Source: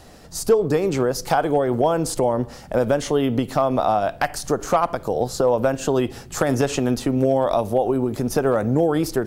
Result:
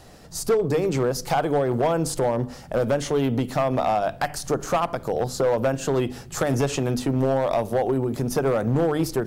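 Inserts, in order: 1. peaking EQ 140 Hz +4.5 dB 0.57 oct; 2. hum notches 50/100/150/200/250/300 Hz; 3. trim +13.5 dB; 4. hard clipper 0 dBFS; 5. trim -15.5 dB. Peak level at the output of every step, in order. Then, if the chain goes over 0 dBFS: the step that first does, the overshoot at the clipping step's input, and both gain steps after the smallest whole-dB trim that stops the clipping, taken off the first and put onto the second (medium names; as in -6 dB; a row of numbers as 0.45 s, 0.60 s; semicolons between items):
-7.0 dBFS, -7.0 dBFS, +6.5 dBFS, 0.0 dBFS, -15.5 dBFS; step 3, 6.5 dB; step 3 +6.5 dB, step 5 -8.5 dB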